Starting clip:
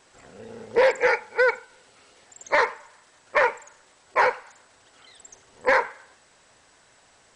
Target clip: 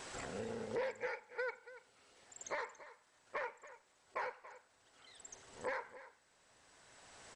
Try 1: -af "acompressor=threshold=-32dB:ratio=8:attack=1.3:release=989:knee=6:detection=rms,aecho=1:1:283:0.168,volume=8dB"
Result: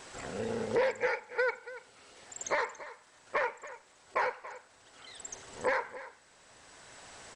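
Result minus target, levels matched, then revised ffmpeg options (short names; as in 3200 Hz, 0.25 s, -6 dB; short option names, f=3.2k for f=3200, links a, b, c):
compressor: peak gain reduction -10.5 dB
-af "acompressor=threshold=-44dB:ratio=8:attack=1.3:release=989:knee=6:detection=rms,aecho=1:1:283:0.168,volume=8dB"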